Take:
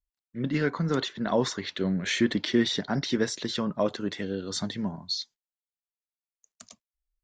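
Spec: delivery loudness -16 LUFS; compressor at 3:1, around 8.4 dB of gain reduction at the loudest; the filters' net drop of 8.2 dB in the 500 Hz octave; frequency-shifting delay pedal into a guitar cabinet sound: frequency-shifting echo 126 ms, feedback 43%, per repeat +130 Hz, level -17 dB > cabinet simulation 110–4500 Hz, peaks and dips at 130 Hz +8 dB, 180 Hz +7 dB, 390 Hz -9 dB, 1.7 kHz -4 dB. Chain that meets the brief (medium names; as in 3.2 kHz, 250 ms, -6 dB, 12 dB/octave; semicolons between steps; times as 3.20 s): peaking EQ 500 Hz -6.5 dB; compression 3:1, threshold -31 dBFS; frequency-shifting echo 126 ms, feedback 43%, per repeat +130 Hz, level -17 dB; cabinet simulation 110–4500 Hz, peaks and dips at 130 Hz +8 dB, 180 Hz +7 dB, 390 Hz -9 dB, 1.7 kHz -4 dB; trim +17.5 dB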